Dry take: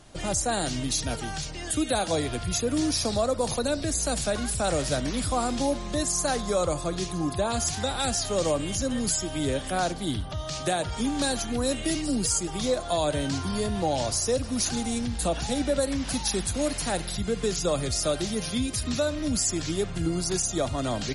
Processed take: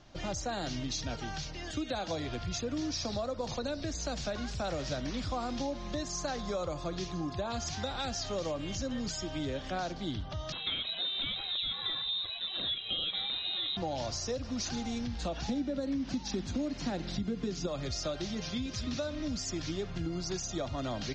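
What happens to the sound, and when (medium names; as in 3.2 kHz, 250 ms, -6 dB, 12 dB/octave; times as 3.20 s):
10.52–13.77 s: frequency inversion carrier 3.9 kHz
15.48–17.67 s: peaking EQ 250 Hz +12 dB 1.3 oct
18.38–18.81 s: echo throw 270 ms, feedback 55%, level -11 dB
whole clip: steep low-pass 6.3 kHz 48 dB/octave; band-stop 440 Hz, Q 13; compression, threshold -26 dBFS; trim -5 dB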